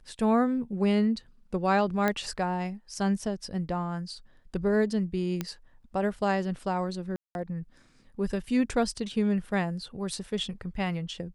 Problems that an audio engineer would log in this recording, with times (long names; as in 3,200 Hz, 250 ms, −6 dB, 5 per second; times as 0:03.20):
0:02.08: click −13 dBFS
0:05.41: click −16 dBFS
0:07.16–0:07.35: drop-out 191 ms